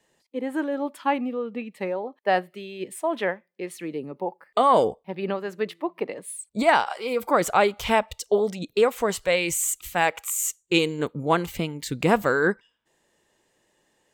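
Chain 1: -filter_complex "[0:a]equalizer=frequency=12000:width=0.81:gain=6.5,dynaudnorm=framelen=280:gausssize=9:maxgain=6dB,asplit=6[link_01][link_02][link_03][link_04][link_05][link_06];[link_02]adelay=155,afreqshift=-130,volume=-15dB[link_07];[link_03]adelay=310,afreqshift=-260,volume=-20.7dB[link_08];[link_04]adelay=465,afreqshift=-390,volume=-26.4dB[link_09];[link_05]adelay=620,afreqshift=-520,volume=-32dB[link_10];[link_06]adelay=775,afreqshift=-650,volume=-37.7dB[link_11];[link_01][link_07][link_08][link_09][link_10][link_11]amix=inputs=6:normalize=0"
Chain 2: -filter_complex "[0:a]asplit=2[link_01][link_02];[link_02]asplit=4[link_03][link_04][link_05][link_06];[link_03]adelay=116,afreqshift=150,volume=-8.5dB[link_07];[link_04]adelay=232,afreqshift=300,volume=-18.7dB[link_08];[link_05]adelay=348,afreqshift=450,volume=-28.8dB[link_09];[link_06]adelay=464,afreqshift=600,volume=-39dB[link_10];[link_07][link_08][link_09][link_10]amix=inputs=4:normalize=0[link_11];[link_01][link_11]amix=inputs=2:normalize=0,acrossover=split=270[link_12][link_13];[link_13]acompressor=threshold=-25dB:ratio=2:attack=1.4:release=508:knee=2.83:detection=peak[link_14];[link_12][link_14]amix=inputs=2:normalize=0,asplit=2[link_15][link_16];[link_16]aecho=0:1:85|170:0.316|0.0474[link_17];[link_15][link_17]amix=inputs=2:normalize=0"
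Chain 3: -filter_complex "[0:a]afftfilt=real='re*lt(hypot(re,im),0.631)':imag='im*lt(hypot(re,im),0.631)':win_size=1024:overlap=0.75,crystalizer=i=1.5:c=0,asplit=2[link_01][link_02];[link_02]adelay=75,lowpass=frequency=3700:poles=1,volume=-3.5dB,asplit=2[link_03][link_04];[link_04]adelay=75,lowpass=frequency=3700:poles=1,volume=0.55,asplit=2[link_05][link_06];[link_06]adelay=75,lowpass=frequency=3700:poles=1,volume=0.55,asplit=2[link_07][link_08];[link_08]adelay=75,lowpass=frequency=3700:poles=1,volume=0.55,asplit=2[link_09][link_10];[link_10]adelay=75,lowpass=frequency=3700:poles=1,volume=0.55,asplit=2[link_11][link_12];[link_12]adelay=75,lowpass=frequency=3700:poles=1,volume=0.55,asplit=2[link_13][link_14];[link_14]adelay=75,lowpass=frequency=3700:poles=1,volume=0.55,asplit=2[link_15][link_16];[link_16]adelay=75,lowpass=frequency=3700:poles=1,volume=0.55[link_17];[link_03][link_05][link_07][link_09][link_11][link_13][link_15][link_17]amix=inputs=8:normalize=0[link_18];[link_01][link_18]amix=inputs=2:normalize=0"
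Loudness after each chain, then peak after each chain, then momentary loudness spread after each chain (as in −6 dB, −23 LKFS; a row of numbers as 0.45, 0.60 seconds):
−20.5, −28.5, −24.5 LKFS; −1.5, −11.5, −4.5 dBFS; 12, 7, 13 LU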